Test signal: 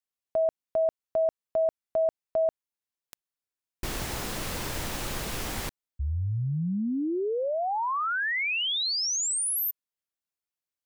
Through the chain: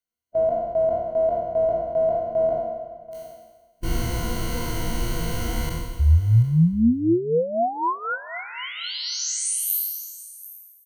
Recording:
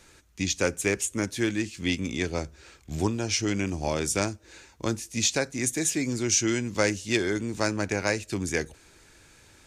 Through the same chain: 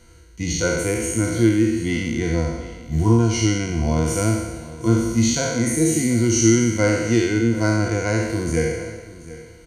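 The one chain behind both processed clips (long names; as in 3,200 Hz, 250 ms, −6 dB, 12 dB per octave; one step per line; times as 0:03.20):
peak hold with a decay on every bin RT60 1.25 s
EQ curve with evenly spaced ripples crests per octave 1.9, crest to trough 12 dB
harmonic and percussive parts rebalanced percussive −16 dB
low-shelf EQ 330 Hz +11 dB
single-tap delay 733 ms −17 dB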